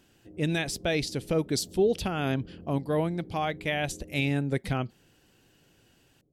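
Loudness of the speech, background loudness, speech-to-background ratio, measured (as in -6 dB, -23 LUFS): -29.5 LUFS, -48.5 LUFS, 19.0 dB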